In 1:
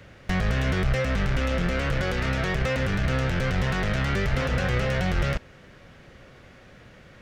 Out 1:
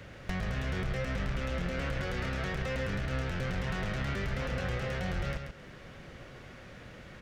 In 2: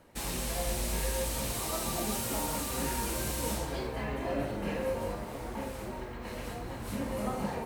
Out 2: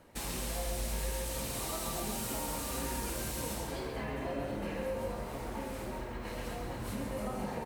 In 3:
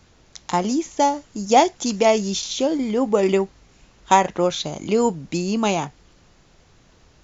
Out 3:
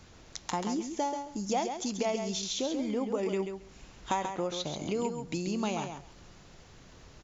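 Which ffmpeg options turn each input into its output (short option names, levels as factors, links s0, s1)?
-filter_complex "[0:a]acompressor=threshold=0.0158:ratio=2.5,asplit=2[s0][s1];[s1]aecho=0:1:135|270|405:0.447|0.0715|0.0114[s2];[s0][s2]amix=inputs=2:normalize=0"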